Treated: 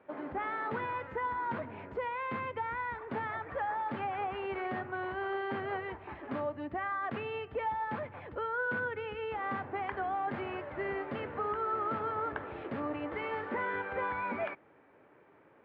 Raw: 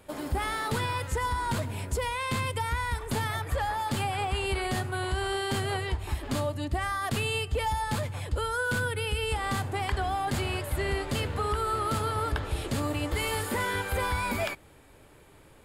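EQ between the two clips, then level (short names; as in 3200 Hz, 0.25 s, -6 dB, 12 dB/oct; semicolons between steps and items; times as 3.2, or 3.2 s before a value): HPF 230 Hz 12 dB/oct; LPF 2100 Hz 24 dB/oct; -3.5 dB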